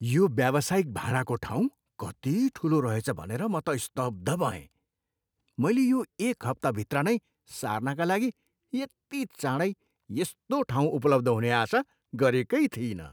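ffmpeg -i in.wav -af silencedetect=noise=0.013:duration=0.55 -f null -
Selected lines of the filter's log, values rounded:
silence_start: 4.60
silence_end: 5.59 | silence_duration: 0.99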